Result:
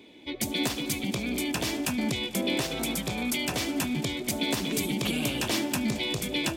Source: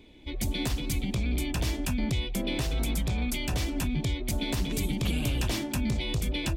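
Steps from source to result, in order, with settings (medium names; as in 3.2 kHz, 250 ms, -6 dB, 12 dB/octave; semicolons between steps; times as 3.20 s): high-pass 210 Hz 12 dB/octave; on a send: multi-head delay 74 ms, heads all three, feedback 68%, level -23.5 dB; on the sum: trim +4.5 dB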